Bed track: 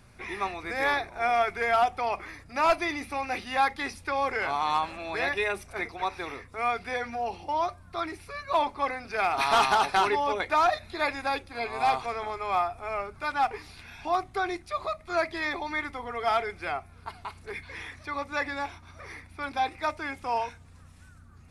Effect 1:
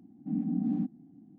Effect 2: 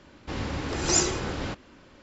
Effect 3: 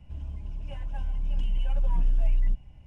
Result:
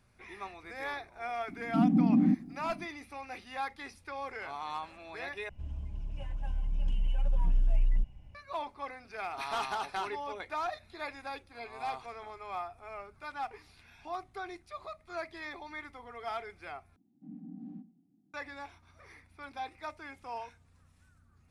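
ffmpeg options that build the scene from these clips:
-filter_complex "[1:a]asplit=2[s0][s1];[0:a]volume=0.251[s2];[s0]alimiter=level_in=16.8:limit=0.891:release=50:level=0:latency=1[s3];[s1]asplit=2[s4][s5];[s5]adelay=87,lowpass=f=870:p=1,volume=0.188,asplit=2[s6][s7];[s7]adelay=87,lowpass=f=870:p=1,volume=0.36,asplit=2[s8][s9];[s9]adelay=87,lowpass=f=870:p=1,volume=0.36[s10];[s4][s6][s8][s10]amix=inputs=4:normalize=0[s11];[s2]asplit=3[s12][s13][s14];[s12]atrim=end=5.494[s15];[3:a]atrim=end=2.86,asetpts=PTS-STARTPTS,volume=0.708[s16];[s13]atrim=start=8.346:end=16.964[s17];[s11]atrim=end=1.38,asetpts=PTS-STARTPTS,volume=0.158[s18];[s14]atrim=start=18.336[s19];[s3]atrim=end=1.38,asetpts=PTS-STARTPTS,volume=0.15,afade=t=in:d=0.004:c=hsin,afade=t=out:st=1.376:d=0.004:c=hsin,adelay=1480[s20];[s15][s16]acrossfade=d=0.004:c1=hsin:c2=hsin[s21];[s21][s17]acrossfade=d=0.004:c1=hsin:c2=hsin[s22];[s22][s18]acrossfade=d=0.004:c1=hsin:c2=hsin[s23];[s23][s19]acrossfade=d=0.004:c1=hsin:c2=hsin[s24];[s24][s20]amix=inputs=2:normalize=0"

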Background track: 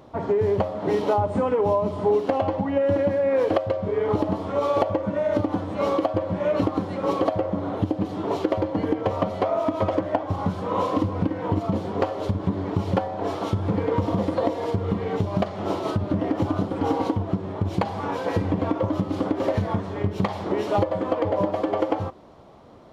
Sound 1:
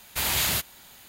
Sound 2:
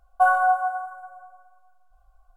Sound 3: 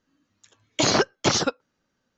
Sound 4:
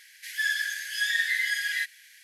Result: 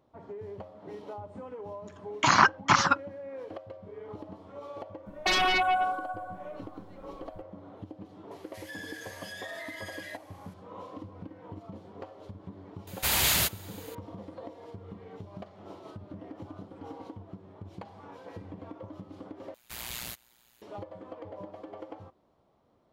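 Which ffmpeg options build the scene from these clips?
-filter_complex "[1:a]asplit=2[s0][s1];[0:a]volume=0.1[s2];[3:a]firequalizer=gain_entry='entry(210,0);entry(460,-15);entry(990,13);entry(3600,-4)':delay=0.05:min_phase=1[s3];[2:a]aeval=exprs='0.422*sin(PI/2*5.01*val(0)/0.422)':c=same[s4];[4:a]acompressor=threshold=0.0282:ratio=3:attack=5.9:release=61:knee=1:detection=peak[s5];[s1]tremolo=f=120:d=0.889[s6];[s2]asplit=2[s7][s8];[s7]atrim=end=19.544[s9];[s6]atrim=end=1.08,asetpts=PTS-STARTPTS,volume=0.299[s10];[s8]atrim=start=20.616[s11];[s3]atrim=end=2.17,asetpts=PTS-STARTPTS,volume=0.668,afade=t=in:d=0.004:c=hsin,afade=t=out:st=2.166:d=0.004:c=hsin,adelay=1440[s12];[s4]atrim=end=2.36,asetpts=PTS-STARTPTS,volume=0.2,afade=t=in:d=0.004:c=hsin,afade=t=out:st=2.356:d=0.004:c=hsin,adelay=5060[s13];[s5]atrim=end=2.23,asetpts=PTS-STARTPTS,volume=0.266,afade=t=in:d=0.004:c=hsin,afade=t=out:st=2.226:d=0.004:c=hsin,adelay=8310[s14];[s0]atrim=end=1.08,asetpts=PTS-STARTPTS,afade=t=in:d=0.004:c=hsin,afade=t=out:st=1.076:d=0.004:c=hsin,adelay=12870[s15];[s9][s10]acrossfade=d=0.004:c1=hsin:c2=hsin[s16];[s16][s11]acrossfade=d=0.004:c1=hsin:c2=hsin[s17];[s17][s12][s13][s14][s15]amix=inputs=5:normalize=0"

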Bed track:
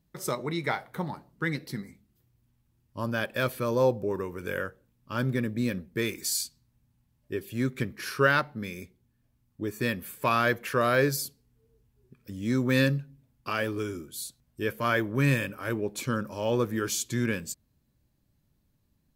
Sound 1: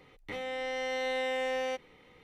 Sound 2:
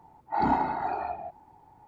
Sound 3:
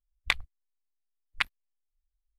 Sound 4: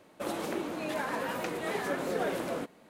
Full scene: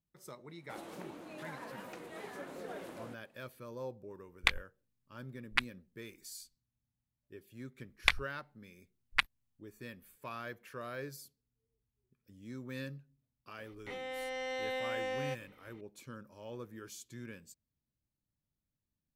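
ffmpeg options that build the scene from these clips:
-filter_complex "[3:a]asplit=2[s0][s1];[0:a]volume=0.112[s2];[4:a]atrim=end=2.89,asetpts=PTS-STARTPTS,volume=0.224,afade=t=in:d=0.004:c=hsin,afade=t=out:st=2.886:d=0.004:c=hsin,adelay=490[s3];[s0]atrim=end=2.38,asetpts=PTS-STARTPTS,volume=0.794,afade=t=in:d=0.004:c=hsin,afade=t=out:st=2.376:d=0.004:c=hsin,adelay=183897S[s4];[s1]atrim=end=2.38,asetpts=PTS-STARTPTS,volume=0.944,afade=t=in:d=0.004:c=hsin,afade=t=out:st=2.376:d=0.004:c=hsin,adelay=343098S[s5];[1:a]atrim=end=2.23,asetpts=PTS-STARTPTS,volume=0.562,afade=t=in:d=0.004:c=hsin,afade=t=out:st=2.226:d=0.004:c=hsin,adelay=13580[s6];[s2][s3][s4][s5][s6]amix=inputs=5:normalize=0"

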